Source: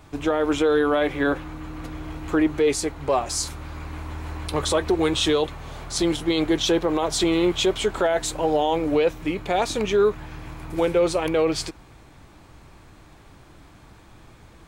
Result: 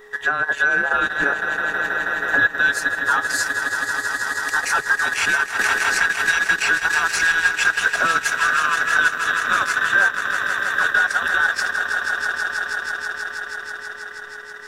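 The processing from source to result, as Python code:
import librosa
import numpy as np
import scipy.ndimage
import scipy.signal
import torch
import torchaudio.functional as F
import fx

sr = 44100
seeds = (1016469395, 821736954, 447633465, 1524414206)

p1 = fx.band_invert(x, sr, width_hz=2000)
p2 = p1 + 10.0 ** (-44.0 / 20.0) * np.sin(2.0 * np.pi * 420.0 * np.arange(len(p1)) / sr)
p3 = p2 + fx.echo_swell(p2, sr, ms=161, loudest=5, wet_db=-9.5, dry=0)
p4 = fx.transient(p3, sr, attack_db=3, sustain_db=-10)
y = fx.band_squash(p4, sr, depth_pct=100, at=(5.59, 7.12))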